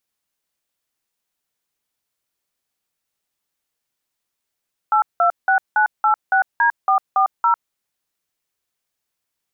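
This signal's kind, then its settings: DTMF "826986D440", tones 0.101 s, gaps 0.179 s, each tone -15 dBFS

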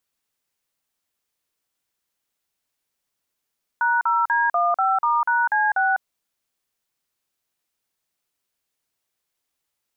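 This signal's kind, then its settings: DTMF "#0D15*#C6", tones 0.201 s, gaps 43 ms, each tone -19.5 dBFS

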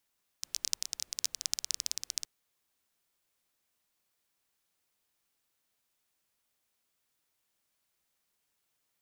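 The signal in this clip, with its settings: rain from filtered ticks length 1.82 s, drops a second 17, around 5600 Hz, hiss -29.5 dB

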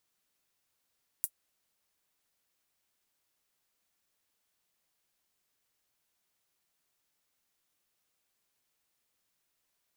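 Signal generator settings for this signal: closed hi-hat, high-pass 9600 Hz, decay 0.07 s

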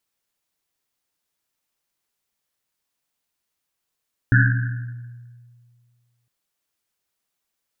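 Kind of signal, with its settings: Risset drum length 1.96 s, pitch 120 Hz, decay 2.05 s, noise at 1600 Hz, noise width 280 Hz, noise 30%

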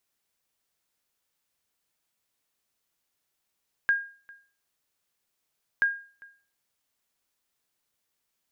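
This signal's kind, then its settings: sonar ping 1620 Hz, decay 0.40 s, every 1.93 s, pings 2, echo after 0.40 s, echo -25.5 dB -16 dBFS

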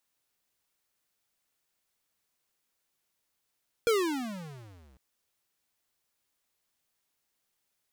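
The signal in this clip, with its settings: gliding synth tone square, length 1.10 s, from 480 Hz, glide -36 st, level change -36.5 dB, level -23 dB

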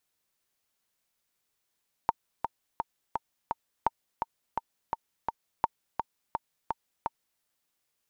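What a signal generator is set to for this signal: metronome 169 bpm, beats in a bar 5, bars 3, 914 Hz, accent 6 dB -10 dBFS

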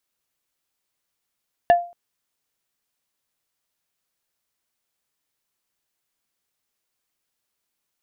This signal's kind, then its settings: wood hit plate, length 0.23 s, lowest mode 696 Hz, decay 0.35 s, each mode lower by 10.5 dB, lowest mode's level -7.5 dB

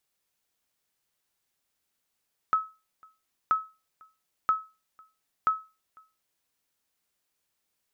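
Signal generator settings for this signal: sonar ping 1290 Hz, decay 0.29 s, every 0.98 s, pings 4, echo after 0.50 s, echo -29.5 dB -16 dBFS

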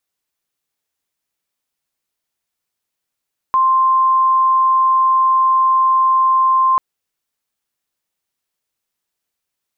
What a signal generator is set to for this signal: tone sine 1050 Hz -10 dBFS 3.24 s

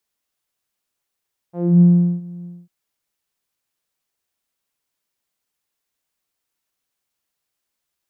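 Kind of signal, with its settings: synth note saw F3 12 dB/oct, low-pass 190 Hz, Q 2, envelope 2 oct, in 0.22 s, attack 0.277 s, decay 0.40 s, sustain -23.5 dB, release 0.23 s, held 0.92 s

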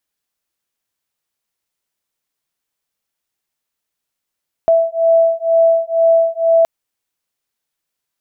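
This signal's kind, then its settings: beating tones 660 Hz, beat 2.1 Hz, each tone -13 dBFS 1.97 s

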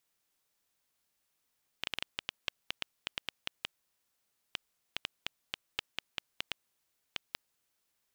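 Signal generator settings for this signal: random clicks 5.1/s -15 dBFS 5.72 s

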